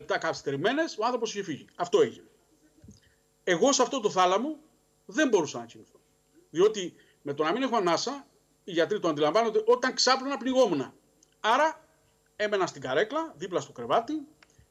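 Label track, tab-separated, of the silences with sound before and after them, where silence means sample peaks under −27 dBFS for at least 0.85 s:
2.080000	3.480000	silence
5.570000	6.560000	silence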